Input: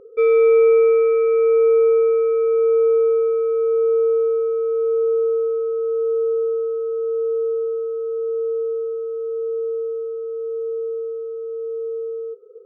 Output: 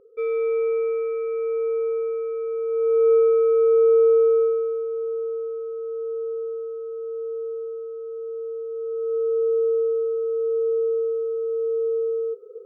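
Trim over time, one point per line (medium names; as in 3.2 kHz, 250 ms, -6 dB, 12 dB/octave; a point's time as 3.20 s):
2.67 s -9.5 dB
3.13 s +1.5 dB
4.43 s +1.5 dB
4.88 s -8.5 dB
8.68 s -8.5 dB
9.15 s +3 dB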